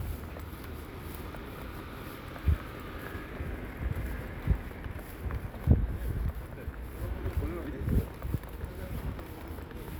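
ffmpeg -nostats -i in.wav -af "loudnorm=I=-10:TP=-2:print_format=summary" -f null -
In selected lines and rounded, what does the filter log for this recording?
Input Integrated:    -36.6 LUFS
Input True Peak:      -8.6 dBTP
Input LRA:             4.1 LU
Input Threshold:     -46.6 LUFS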